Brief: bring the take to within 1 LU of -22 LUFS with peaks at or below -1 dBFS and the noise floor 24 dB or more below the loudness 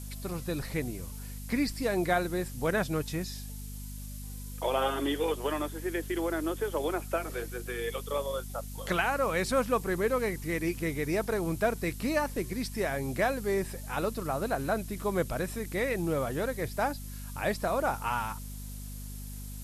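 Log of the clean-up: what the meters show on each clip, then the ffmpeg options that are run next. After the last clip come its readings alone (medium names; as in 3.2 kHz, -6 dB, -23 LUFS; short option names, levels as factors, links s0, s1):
hum 50 Hz; highest harmonic 250 Hz; hum level -38 dBFS; noise floor -41 dBFS; noise floor target -56 dBFS; loudness -31.5 LUFS; peak level -14.5 dBFS; loudness target -22.0 LUFS
-> -af "bandreject=f=50:t=h:w=6,bandreject=f=100:t=h:w=6,bandreject=f=150:t=h:w=6,bandreject=f=200:t=h:w=6,bandreject=f=250:t=h:w=6"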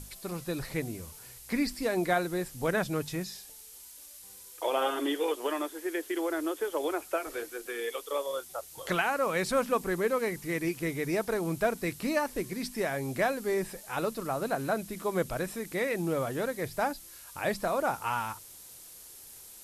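hum not found; noise floor -50 dBFS; noise floor target -56 dBFS
-> -af "afftdn=nr=6:nf=-50"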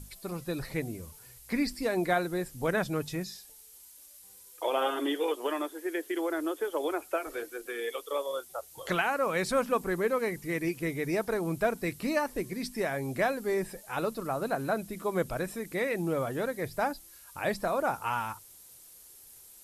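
noise floor -53 dBFS; noise floor target -56 dBFS
-> -af "afftdn=nr=6:nf=-53"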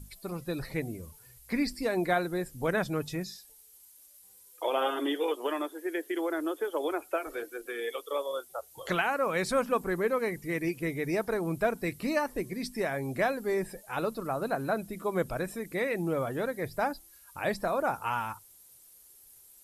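noise floor -57 dBFS; loudness -32.0 LUFS; peak level -14.5 dBFS; loudness target -22.0 LUFS
-> -af "volume=3.16"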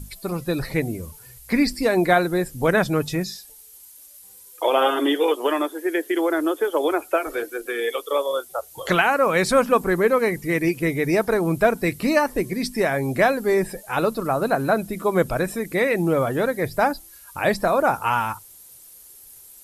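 loudness -22.0 LUFS; peak level -4.5 dBFS; noise floor -47 dBFS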